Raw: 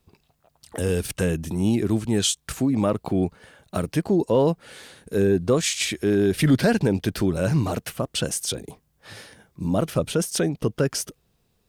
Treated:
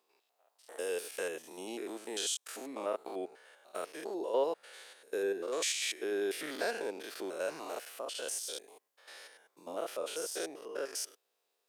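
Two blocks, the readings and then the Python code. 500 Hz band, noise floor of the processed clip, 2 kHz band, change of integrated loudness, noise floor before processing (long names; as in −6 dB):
−11.5 dB, −81 dBFS, −9.0 dB, −14.0 dB, −69 dBFS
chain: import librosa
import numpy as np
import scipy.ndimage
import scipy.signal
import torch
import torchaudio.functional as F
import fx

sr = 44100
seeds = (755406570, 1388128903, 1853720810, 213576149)

y = fx.spec_steps(x, sr, hold_ms=100)
y = scipy.signal.sosfilt(scipy.signal.butter(4, 430.0, 'highpass', fs=sr, output='sos'), y)
y = y * librosa.db_to_amplitude(-6.5)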